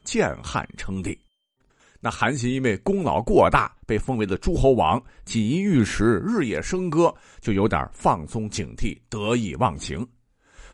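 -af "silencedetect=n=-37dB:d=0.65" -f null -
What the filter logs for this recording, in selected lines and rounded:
silence_start: 1.14
silence_end: 2.03 | silence_duration: 0.90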